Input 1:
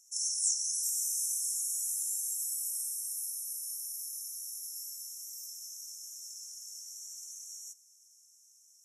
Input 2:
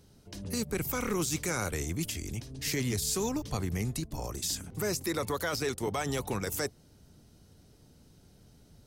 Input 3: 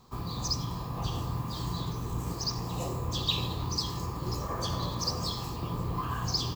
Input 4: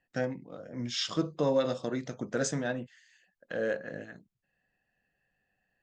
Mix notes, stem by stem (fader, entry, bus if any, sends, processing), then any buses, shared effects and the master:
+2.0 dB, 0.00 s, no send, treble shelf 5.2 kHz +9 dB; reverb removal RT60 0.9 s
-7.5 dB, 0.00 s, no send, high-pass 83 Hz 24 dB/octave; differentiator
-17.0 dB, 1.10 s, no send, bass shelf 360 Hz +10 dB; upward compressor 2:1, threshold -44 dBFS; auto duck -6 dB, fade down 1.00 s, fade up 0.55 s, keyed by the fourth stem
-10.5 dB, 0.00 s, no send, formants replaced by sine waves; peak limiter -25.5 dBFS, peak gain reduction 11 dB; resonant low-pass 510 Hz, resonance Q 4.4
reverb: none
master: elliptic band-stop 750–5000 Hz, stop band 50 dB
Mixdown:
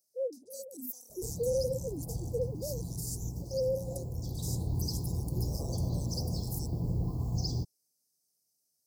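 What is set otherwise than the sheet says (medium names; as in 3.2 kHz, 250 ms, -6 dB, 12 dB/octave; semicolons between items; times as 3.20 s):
stem 1: muted; stem 3 -17.0 dB -> -6.5 dB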